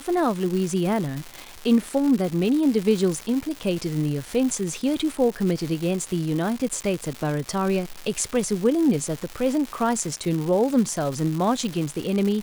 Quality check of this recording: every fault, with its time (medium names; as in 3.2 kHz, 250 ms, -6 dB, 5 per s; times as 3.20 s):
crackle 340 per s -27 dBFS